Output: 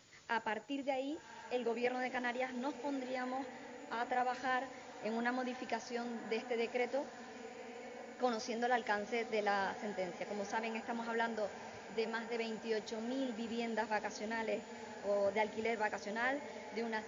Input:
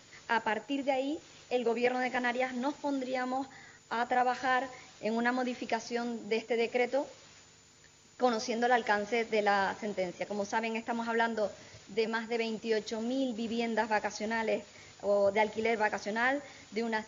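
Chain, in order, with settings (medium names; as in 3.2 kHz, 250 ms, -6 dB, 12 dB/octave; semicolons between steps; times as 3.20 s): echo that smears into a reverb 1088 ms, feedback 71%, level -13.5 dB; trim -7 dB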